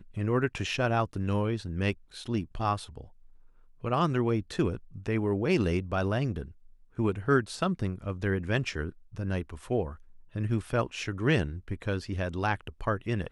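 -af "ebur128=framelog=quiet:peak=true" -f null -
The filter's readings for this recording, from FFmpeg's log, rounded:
Integrated loudness:
  I:         -30.4 LUFS
  Threshold: -40.8 LUFS
Loudness range:
  LRA:         2.8 LU
  Threshold: -50.9 LUFS
  LRA low:   -32.4 LUFS
  LRA high:  -29.6 LUFS
True peak:
  Peak:      -11.4 dBFS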